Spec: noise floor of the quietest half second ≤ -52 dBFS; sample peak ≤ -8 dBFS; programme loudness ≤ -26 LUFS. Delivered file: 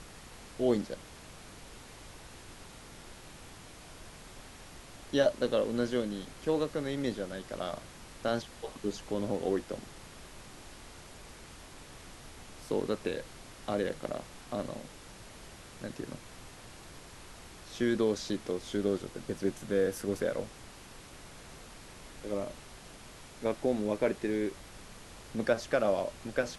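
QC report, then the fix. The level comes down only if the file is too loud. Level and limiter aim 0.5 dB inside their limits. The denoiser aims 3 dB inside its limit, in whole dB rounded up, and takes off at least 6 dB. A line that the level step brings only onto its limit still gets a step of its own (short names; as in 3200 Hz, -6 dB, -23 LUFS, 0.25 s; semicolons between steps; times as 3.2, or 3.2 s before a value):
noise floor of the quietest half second -50 dBFS: fail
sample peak -14.0 dBFS: OK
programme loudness -33.5 LUFS: OK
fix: denoiser 6 dB, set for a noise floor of -50 dBFS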